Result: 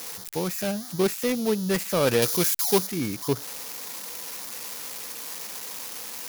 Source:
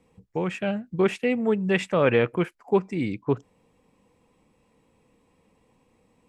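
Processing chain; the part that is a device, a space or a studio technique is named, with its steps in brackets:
budget class-D amplifier (gap after every zero crossing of 0.19 ms; spike at every zero crossing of −16 dBFS)
0:02.22–0:02.87: high-shelf EQ 3,000 Hz +10.5 dB
level −1.5 dB

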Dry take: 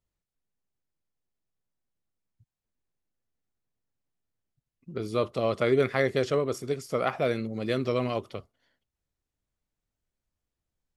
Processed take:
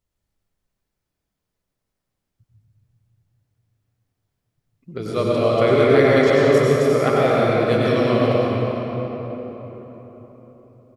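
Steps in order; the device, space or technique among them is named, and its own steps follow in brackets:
cave (single-tap delay 353 ms −11.5 dB; convolution reverb RT60 4.2 s, pre-delay 88 ms, DRR −6 dB)
level +3.5 dB

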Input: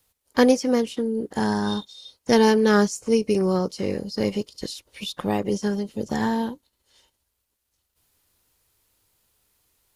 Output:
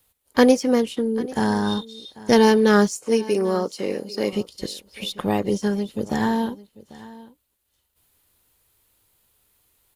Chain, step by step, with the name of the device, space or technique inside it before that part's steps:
0:02.96–0:04.33: high-pass filter 270 Hz 12 dB per octave
exciter from parts (in parallel at −7 dB: high-pass filter 4,200 Hz 12 dB per octave + soft clipping −36 dBFS, distortion −7 dB + high-pass filter 3,700 Hz 24 dB per octave)
on the sum: single-tap delay 793 ms −19.5 dB
level +2 dB

